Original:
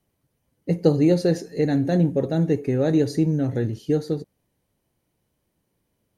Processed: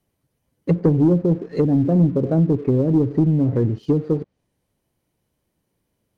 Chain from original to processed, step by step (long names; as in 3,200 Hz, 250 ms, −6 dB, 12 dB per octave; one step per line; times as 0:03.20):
treble cut that deepens with the level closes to 330 Hz, closed at −17 dBFS
leveller curve on the samples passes 1
level +2 dB